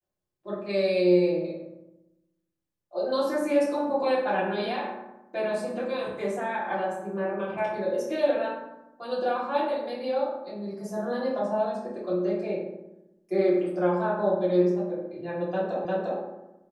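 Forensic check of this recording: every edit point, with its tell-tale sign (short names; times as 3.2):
15.85 repeat of the last 0.35 s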